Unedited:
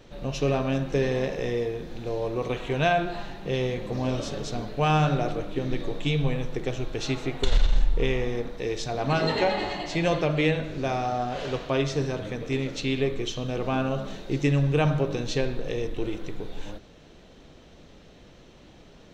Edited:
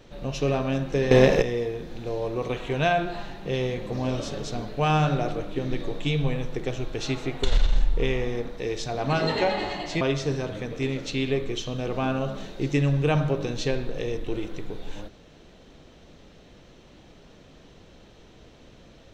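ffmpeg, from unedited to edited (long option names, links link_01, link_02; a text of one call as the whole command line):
ffmpeg -i in.wav -filter_complex "[0:a]asplit=4[link_01][link_02][link_03][link_04];[link_01]atrim=end=1.112[link_05];[link_02]atrim=start=1.108:end=1.422,asetpts=PTS-STARTPTS,volume=11dB[link_06];[link_03]atrim=start=1.418:end=10.012[link_07];[link_04]atrim=start=11.708[link_08];[link_05][link_06]acrossfade=duration=0.004:curve1=hsin:curve2=hsin[link_09];[link_09][link_07]acrossfade=duration=0.004:curve1=hsin:curve2=hsin[link_10];[link_10][link_08]acrossfade=duration=0.004:curve1=hsin:curve2=hsin" out.wav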